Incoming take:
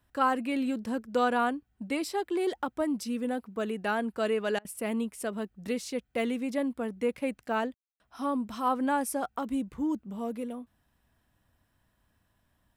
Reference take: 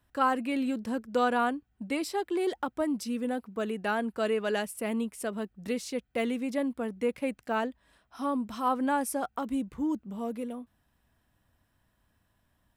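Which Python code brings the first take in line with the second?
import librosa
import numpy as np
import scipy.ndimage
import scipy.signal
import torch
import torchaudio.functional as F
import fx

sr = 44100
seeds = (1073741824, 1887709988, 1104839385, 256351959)

y = fx.fix_ambience(x, sr, seeds[0], print_start_s=11.65, print_end_s=12.15, start_s=7.74, end_s=8.0)
y = fx.fix_interpolate(y, sr, at_s=(4.59,), length_ms=58.0)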